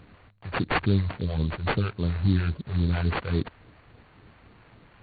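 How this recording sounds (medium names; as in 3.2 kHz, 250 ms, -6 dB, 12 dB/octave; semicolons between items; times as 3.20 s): phasing stages 2, 3.6 Hz, lowest notch 230–3200 Hz; aliases and images of a low sample rate 4 kHz, jitter 20%; AC-3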